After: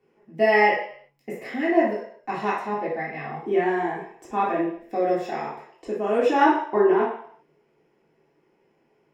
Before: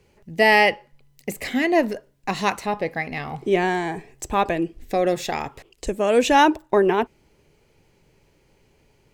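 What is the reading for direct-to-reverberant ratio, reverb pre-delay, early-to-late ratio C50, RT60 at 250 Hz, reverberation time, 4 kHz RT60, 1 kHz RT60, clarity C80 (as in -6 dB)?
-8.5 dB, 3 ms, 3.0 dB, no reading, 0.60 s, 0.60 s, 0.60 s, 7.0 dB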